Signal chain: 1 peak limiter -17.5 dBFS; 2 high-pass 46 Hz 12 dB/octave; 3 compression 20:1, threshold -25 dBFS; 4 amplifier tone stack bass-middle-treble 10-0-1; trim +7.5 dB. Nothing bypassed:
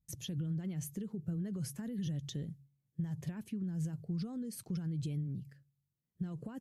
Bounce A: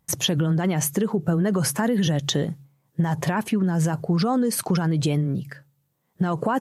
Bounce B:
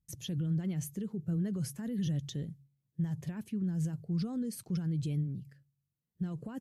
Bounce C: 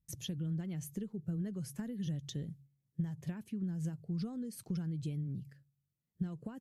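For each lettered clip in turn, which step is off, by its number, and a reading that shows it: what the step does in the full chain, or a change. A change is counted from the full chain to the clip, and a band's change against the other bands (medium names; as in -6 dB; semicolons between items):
4, 1 kHz band +11.0 dB; 3, mean gain reduction 3.0 dB; 1, mean gain reduction 3.5 dB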